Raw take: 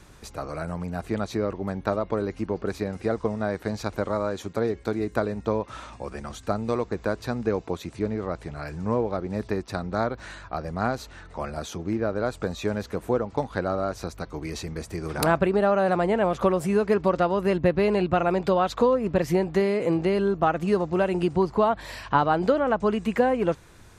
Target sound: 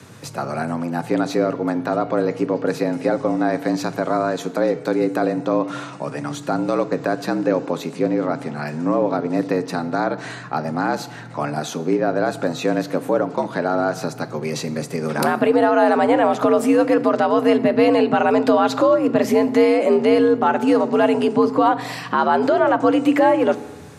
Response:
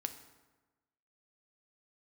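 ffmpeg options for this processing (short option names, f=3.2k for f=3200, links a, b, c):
-filter_complex "[0:a]alimiter=limit=-15.5dB:level=0:latency=1:release=21,afreqshift=74,asplit=2[a][b];[1:a]atrim=start_sample=2205[c];[b][c]afir=irnorm=-1:irlink=0,volume=4dB[d];[a][d]amix=inputs=2:normalize=0"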